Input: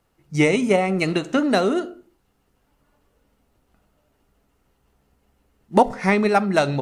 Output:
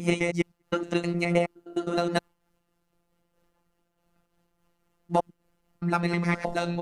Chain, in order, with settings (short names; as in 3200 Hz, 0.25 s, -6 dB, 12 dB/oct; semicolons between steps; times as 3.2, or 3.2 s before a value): slices in reverse order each 0.104 s, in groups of 7; robotiser 172 Hz; noise-modulated level, depth 65%